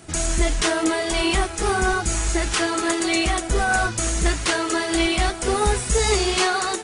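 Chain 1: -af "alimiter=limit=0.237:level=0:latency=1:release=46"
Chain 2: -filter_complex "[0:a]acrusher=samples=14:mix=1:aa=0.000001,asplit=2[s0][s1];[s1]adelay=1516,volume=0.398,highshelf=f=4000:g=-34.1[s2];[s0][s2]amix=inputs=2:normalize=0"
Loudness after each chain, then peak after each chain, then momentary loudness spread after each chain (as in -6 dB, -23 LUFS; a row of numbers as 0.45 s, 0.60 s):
-22.5 LUFS, -21.5 LUFS; -12.5 dBFS, -7.0 dBFS; 2 LU, 3 LU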